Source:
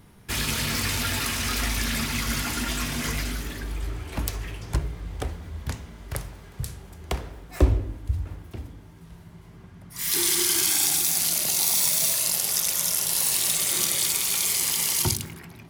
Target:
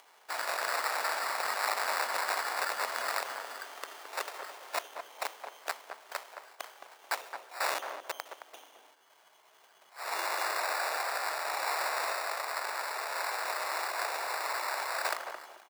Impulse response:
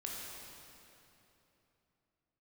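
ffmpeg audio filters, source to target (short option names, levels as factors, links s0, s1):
-filter_complex "[0:a]equalizer=f=10000:t=o:w=2.4:g=-11.5,acrusher=samples=14:mix=1:aa=0.000001,aeval=exprs='(mod(12.6*val(0)+1,2)-1)/12.6':c=same,asplit=2[s0][s1];[s1]adelay=218,lowpass=f=1100:p=1,volume=0.562,asplit=2[s2][s3];[s3]adelay=218,lowpass=f=1100:p=1,volume=0.3,asplit=2[s4][s5];[s5]adelay=218,lowpass=f=1100:p=1,volume=0.3,asplit=2[s6][s7];[s7]adelay=218,lowpass=f=1100:p=1,volume=0.3[s8];[s0][s2][s4][s6][s8]amix=inputs=5:normalize=0,agate=range=0.447:threshold=0.00891:ratio=16:detection=peak,acompressor=mode=upward:threshold=0.01:ratio=2.5,highpass=f=620:w=0.5412,highpass=f=620:w=1.3066"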